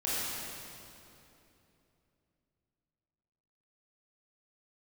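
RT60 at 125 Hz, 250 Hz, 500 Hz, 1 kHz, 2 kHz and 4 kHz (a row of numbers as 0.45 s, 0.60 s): 3.8 s, 3.5 s, 3.2 s, 2.7 s, 2.5 s, 2.3 s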